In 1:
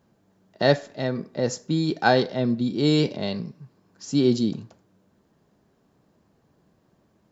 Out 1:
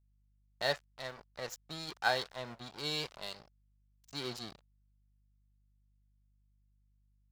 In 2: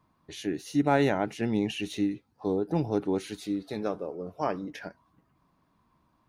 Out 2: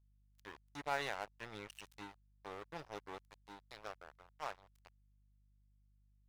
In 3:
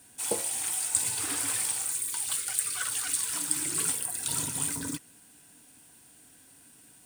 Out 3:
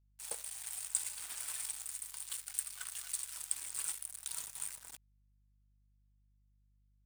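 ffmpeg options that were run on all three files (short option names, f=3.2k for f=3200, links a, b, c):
-af "aeval=exprs='sgn(val(0))*max(abs(val(0))-0.0251,0)':c=same,lowshelf=f=450:g=-12,aeval=exprs='val(0)+0.000708*(sin(2*PI*50*n/s)+sin(2*PI*2*50*n/s)/2+sin(2*PI*3*50*n/s)/3+sin(2*PI*4*50*n/s)/4+sin(2*PI*5*50*n/s)/5)':c=same,equalizer=f=270:t=o:w=1.5:g=-11.5,volume=-5.5dB"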